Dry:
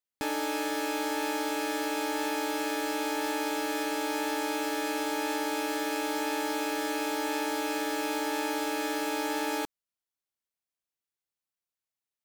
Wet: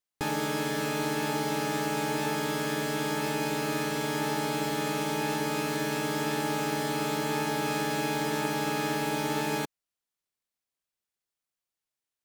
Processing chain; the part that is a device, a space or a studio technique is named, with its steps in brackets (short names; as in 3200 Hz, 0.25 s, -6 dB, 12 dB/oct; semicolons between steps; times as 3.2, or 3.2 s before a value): octave pedal (harmoniser -12 st -4 dB)